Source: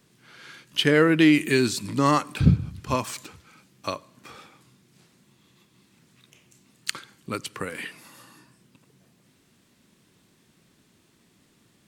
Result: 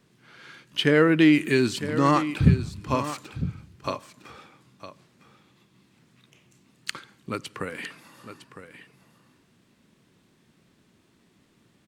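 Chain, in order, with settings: high shelf 4800 Hz -8.5 dB; echo 0.957 s -12 dB

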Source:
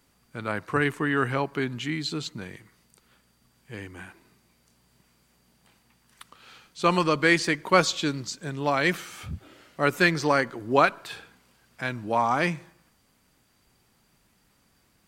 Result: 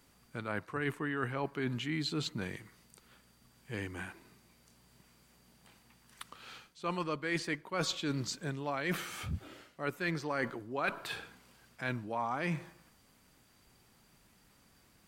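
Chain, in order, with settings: dynamic EQ 6300 Hz, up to -5 dB, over -46 dBFS, Q 0.93; reverse; compressor 10:1, threshold -31 dBFS, peak gain reduction 18.5 dB; reverse

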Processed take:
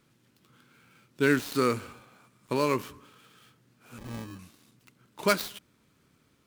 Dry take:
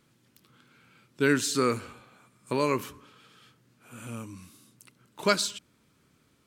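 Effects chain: switching dead time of 0.064 ms; 3.98–4.39 sample-rate reducer 1400 Hz, jitter 0%

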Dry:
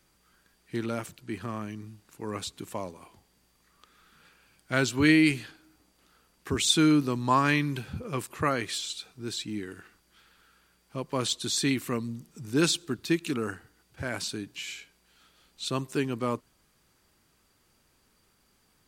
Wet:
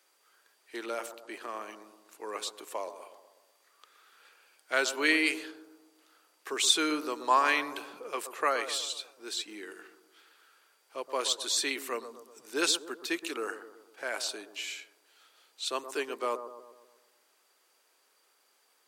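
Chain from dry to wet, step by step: HPF 420 Hz 24 dB/oct; on a send: analogue delay 0.123 s, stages 1024, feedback 52%, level -10.5 dB

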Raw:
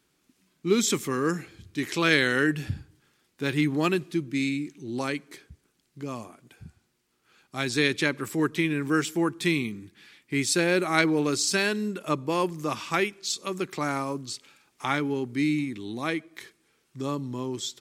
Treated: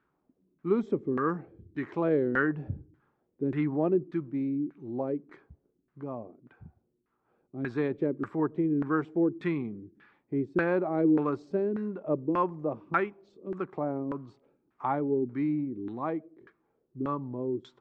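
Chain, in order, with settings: LFO low-pass saw down 1.7 Hz 290–1500 Hz; gain -4.5 dB

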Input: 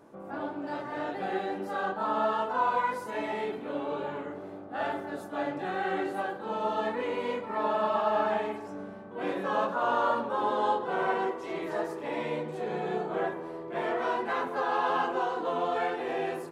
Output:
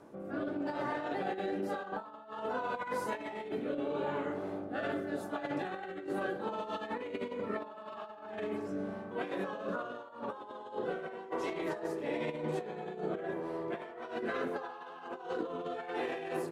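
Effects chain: rotary speaker horn 0.85 Hz; negative-ratio compressor -37 dBFS, ratio -0.5

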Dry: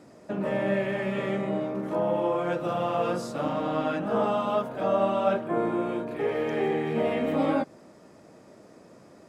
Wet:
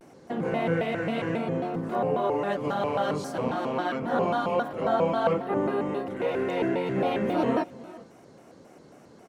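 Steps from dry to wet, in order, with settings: 3.55–4.02 HPF 220 Hz 6 dB/oct; echo 0.4 s -19.5 dB; shaped vibrato square 3.7 Hz, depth 250 cents

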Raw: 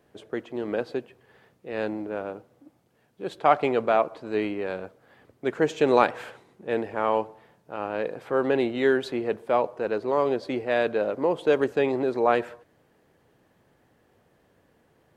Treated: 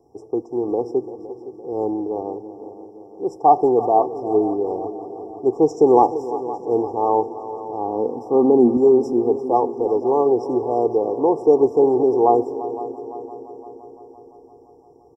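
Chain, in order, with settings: brick-wall FIR band-stop 1200–5000 Hz; 7.87–8.77 bell 240 Hz +15 dB 0.26 oct; comb 2.5 ms, depth 61%; multi-head echo 0.171 s, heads second and third, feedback 58%, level -15 dB; reverb RT60 0.20 s, pre-delay 23 ms, DRR 23 dB; gain -5.5 dB

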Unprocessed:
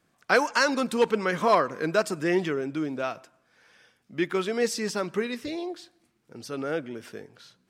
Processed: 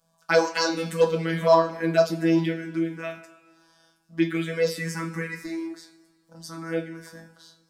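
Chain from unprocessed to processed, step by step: robotiser 164 Hz; envelope phaser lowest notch 340 Hz, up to 2200 Hz, full sweep at -20.5 dBFS; two-slope reverb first 0.22 s, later 1.6 s, from -18 dB, DRR 2.5 dB; gain +4 dB

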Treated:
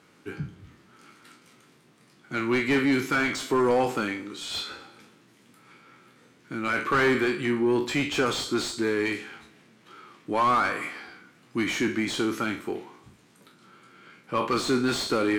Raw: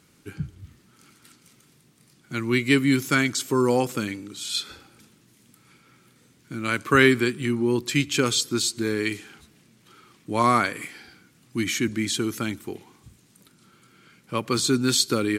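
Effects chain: spectral trails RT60 0.32 s; Schroeder reverb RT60 1 s, combs from 32 ms, DRR 18 dB; overdrive pedal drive 24 dB, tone 1100 Hz, clips at -2 dBFS; gain -9 dB

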